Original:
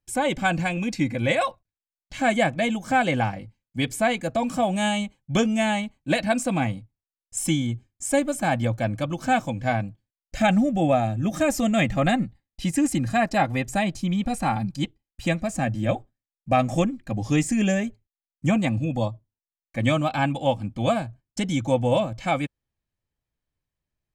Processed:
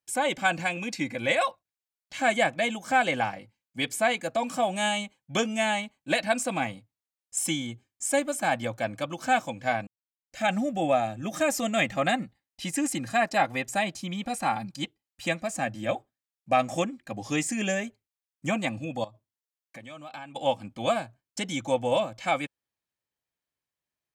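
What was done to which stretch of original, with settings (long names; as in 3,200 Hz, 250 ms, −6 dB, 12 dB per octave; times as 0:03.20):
0:09.87–0:10.57: fade in quadratic
0:19.04–0:20.36: downward compressor 12 to 1, threshold −34 dBFS
whole clip: high-pass filter 560 Hz 6 dB per octave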